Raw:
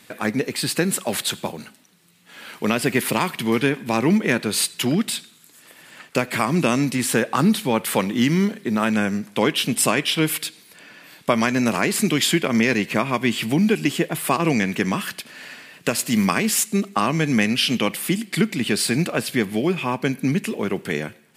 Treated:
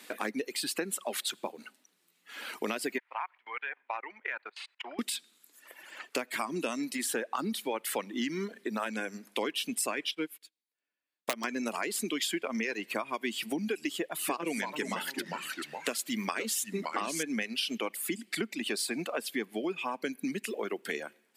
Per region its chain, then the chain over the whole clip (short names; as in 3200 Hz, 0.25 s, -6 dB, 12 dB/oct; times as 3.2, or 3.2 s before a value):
2.98–4.99 level quantiser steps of 23 dB + Chebyshev band-pass 810–2200 Hz
10.11–11.44 wrapped overs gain 6.5 dB + upward expander 2.5:1, over -38 dBFS
13.91–17.23 bell 3400 Hz +2.5 dB 0.43 oct + echoes that change speed 0.278 s, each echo -2 st, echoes 2, each echo -6 dB
whole clip: reverb removal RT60 1.9 s; HPF 250 Hz 24 dB/oct; compressor 3:1, threshold -32 dBFS; gain -1 dB